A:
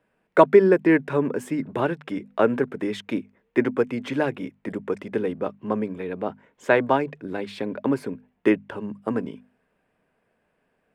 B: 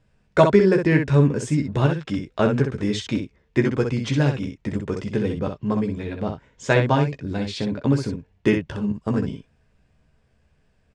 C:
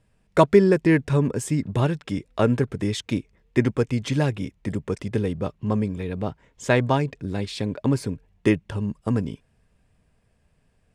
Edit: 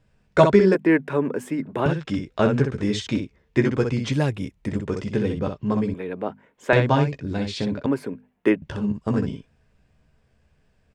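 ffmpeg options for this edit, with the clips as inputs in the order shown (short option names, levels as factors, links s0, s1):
-filter_complex "[0:a]asplit=3[s0][s1][s2];[1:a]asplit=5[s3][s4][s5][s6][s7];[s3]atrim=end=0.752[s8];[s0]atrim=start=0.748:end=1.862[s9];[s4]atrim=start=1.858:end=4.122[s10];[2:a]atrim=start=4.118:end=4.682[s11];[s5]atrim=start=4.678:end=5.942[s12];[s1]atrim=start=5.938:end=6.732[s13];[s6]atrim=start=6.728:end=7.862[s14];[s2]atrim=start=7.858:end=8.622[s15];[s7]atrim=start=8.618[s16];[s8][s9]acrossfade=d=0.004:c1=hsin:c2=hsin[s17];[s17][s10]acrossfade=d=0.004:c1=hsin:c2=hsin[s18];[s18][s11]acrossfade=d=0.004:c1=hsin:c2=hsin[s19];[s19][s12]acrossfade=d=0.004:c1=hsin:c2=hsin[s20];[s20][s13]acrossfade=d=0.004:c1=hsin:c2=hsin[s21];[s21][s14]acrossfade=d=0.004:c1=hsin:c2=hsin[s22];[s22][s15]acrossfade=d=0.004:c1=hsin:c2=hsin[s23];[s23][s16]acrossfade=d=0.004:c1=hsin:c2=hsin"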